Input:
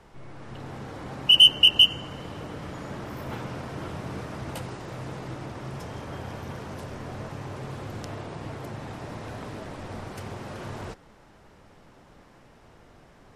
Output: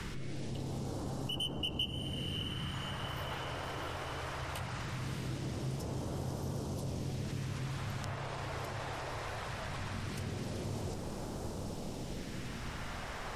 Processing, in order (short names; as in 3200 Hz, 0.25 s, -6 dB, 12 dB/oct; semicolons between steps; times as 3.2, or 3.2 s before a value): in parallel at +1.5 dB: negative-ratio compressor -47 dBFS, ratio -1; on the sum: phaser stages 2, 0.2 Hz, lowest notch 170–2200 Hz; diffused feedback echo 0.618 s, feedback 46%, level -8 dB; three-band squash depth 70%; gain -5.5 dB